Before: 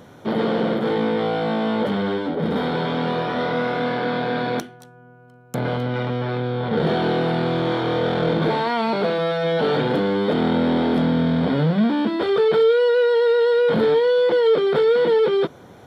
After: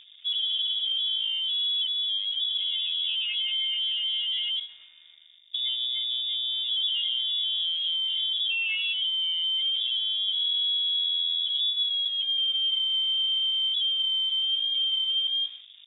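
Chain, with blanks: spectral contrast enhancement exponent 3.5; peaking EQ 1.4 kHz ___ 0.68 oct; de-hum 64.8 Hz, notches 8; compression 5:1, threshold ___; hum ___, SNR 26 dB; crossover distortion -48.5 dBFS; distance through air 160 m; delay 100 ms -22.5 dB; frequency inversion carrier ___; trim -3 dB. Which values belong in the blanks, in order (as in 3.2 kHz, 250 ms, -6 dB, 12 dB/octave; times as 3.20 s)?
+10.5 dB, -21 dBFS, 50 Hz, 3.6 kHz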